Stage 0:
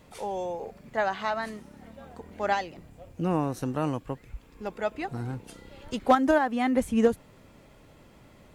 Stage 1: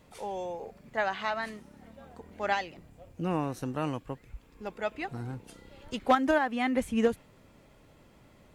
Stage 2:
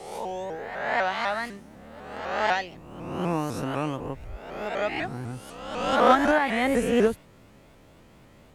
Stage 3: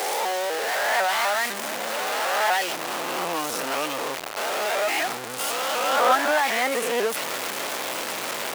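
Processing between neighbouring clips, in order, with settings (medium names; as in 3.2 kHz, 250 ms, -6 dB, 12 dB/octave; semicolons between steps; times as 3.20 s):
dynamic bell 2.5 kHz, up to +6 dB, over -44 dBFS, Q 0.92; trim -4 dB
reverse spectral sustain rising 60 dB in 1.18 s; vibrato with a chosen wave saw up 4 Hz, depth 160 cents; trim +2 dB
jump at every zero crossing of -18 dBFS; high-pass 530 Hz 12 dB/octave; trim -2 dB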